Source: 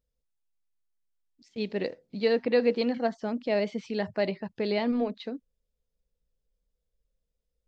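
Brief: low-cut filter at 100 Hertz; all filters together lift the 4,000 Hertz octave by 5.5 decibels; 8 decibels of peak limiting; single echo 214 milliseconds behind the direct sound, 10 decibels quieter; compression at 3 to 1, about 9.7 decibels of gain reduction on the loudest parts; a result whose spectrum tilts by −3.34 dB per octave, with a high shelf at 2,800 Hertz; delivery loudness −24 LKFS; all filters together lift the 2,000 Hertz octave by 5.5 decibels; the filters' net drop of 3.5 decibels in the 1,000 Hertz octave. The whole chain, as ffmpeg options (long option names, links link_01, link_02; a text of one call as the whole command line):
ffmpeg -i in.wav -af "highpass=100,equalizer=frequency=1000:width_type=o:gain=-7,equalizer=frequency=2000:width_type=o:gain=8,highshelf=frequency=2800:gain=-6,equalizer=frequency=4000:width_type=o:gain=9,acompressor=threshold=-32dB:ratio=3,alimiter=level_in=2.5dB:limit=-24dB:level=0:latency=1,volume=-2.5dB,aecho=1:1:214:0.316,volume=13.5dB" out.wav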